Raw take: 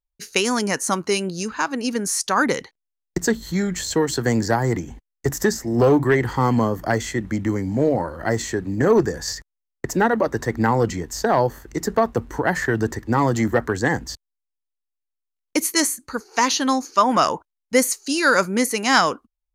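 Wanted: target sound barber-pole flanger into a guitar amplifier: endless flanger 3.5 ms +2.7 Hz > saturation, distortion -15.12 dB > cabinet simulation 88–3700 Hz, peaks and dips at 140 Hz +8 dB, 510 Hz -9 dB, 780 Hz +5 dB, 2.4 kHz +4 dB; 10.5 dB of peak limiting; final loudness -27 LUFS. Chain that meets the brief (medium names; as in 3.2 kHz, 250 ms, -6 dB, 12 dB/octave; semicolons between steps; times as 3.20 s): peak limiter -13 dBFS; endless flanger 3.5 ms +2.7 Hz; saturation -20 dBFS; cabinet simulation 88–3700 Hz, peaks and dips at 140 Hz +8 dB, 510 Hz -9 dB, 780 Hz +5 dB, 2.4 kHz +4 dB; trim +2.5 dB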